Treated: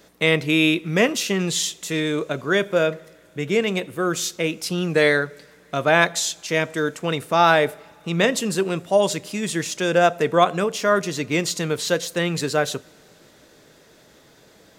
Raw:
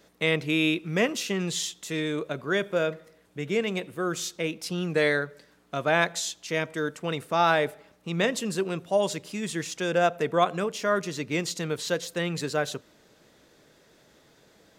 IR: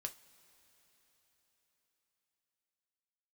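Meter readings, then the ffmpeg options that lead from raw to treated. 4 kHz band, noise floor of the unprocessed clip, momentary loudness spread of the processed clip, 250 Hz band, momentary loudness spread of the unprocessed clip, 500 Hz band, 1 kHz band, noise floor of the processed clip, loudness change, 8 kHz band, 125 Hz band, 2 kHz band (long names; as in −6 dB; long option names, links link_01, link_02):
+6.5 dB, −60 dBFS, 8 LU, +6.0 dB, 8 LU, +6.0 dB, +6.0 dB, −53 dBFS, +6.5 dB, +7.5 dB, +6.0 dB, +6.5 dB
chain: -filter_complex "[0:a]asplit=2[link_01][link_02];[1:a]atrim=start_sample=2205,highshelf=frequency=5700:gain=10.5[link_03];[link_02][link_03]afir=irnorm=-1:irlink=0,volume=-9.5dB[link_04];[link_01][link_04]amix=inputs=2:normalize=0,volume=4.5dB"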